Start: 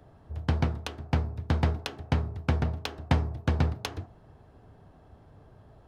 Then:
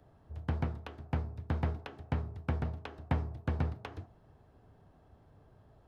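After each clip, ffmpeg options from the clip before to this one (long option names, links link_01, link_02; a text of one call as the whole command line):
ffmpeg -i in.wav -filter_complex "[0:a]acrossover=split=2700[link_01][link_02];[link_02]acompressor=threshold=-52dB:ratio=4:attack=1:release=60[link_03];[link_01][link_03]amix=inputs=2:normalize=0,volume=-7dB" out.wav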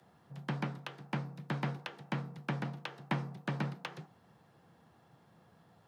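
ffmpeg -i in.wav -af "tiltshelf=frequency=970:gain=-6,afreqshift=64,volume=1.5dB" out.wav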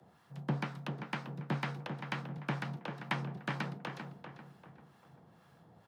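ffmpeg -i in.wav -filter_complex "[0:a]acrossover=split=930[link_01][link_02];[link_01]aeval=exprs='val(0)*(1-0.7/2+0.7/2*cos(2*PI*2.1*n/s))':channel_layout=same[link_03];[link_02]aeval=exprs='val(0)*(1-0.7/2-0.7/2*cos(2*PI*2.1*n/s))':channel_layout=same[link_04];[link_03][link_04]amix=inputs=2:normalize=0,asplit=2[link_05][link_06];[link_06]adelay=393,lowpass=frequency=2400:poles=1,volume=-6.5dB,asplit=2[link_07][link_08];[link_08]adelay=393,lowpass=frequency=2400:poles=1,volume=0.42,asplit=2[link_09][link_10];[link_10]adelay=393,lowpass=frequency=2400:poles=1,volume=0.42,asplit=2[link_11][link_12];[link_12]adelay=393,lowpass=frequency=2400:poles=1,volume=0.42,asplit=2[link_13][link_14];[link_14]adelay=393,lowpass=frequency=2400:poles=1,volume=0.42[link_15];[link_07][link_09][link_11][link_13][link_15]amix=inputs=5:normalize=0[link_16];[link_05][link_16]amix=inputs=2:normalize=0,volume=4dB" out.wav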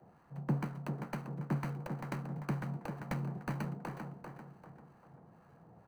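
ffmpeg -i in.wav -filter_complex "[0:a]acrossover=split=370|3000[link_01][link_02][link_03];[link_02]acompressor=threshold=-44dB:ratio=3[link_04];[link_01][link_04][link_03]amix=inputs=3:normalize=0,acrossover=split=200|1900[link_05][link_06][link_07];[link_07]acrusher=samples=25:mix=1:aa=0.000001[link_08];[link_05][link_06][link_08]amix=inputs=3:normalize=0,volume=2dB" out.wav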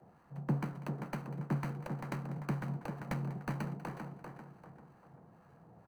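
ffmpeg -i in.wav -af "aecho=1:1:194:0.141" -ar 48000 -c:a ac3 -b:a 320k out.ac3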